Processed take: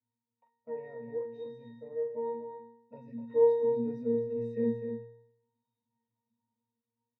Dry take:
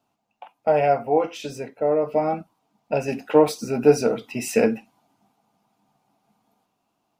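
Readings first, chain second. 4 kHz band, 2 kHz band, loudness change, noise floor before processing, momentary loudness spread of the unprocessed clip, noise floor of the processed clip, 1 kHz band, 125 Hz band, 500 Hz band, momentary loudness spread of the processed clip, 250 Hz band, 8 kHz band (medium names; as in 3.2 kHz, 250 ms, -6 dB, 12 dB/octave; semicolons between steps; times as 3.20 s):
under -25 dB, under -20 dB, -10.0 dB, -75 dBFS, 11 LU, under -85 dBFS, -20.0 dB, -13.0 dB, -9.5 dB, 19 LU, -11.0 dB, under -40 dB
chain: flange 0.54 Hz, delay 7.9 ms, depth 1.6 ms, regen +52%; pitch-class resonator A#, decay 0.75 s; delay 251 ms -8 dB; trim +5.5 dB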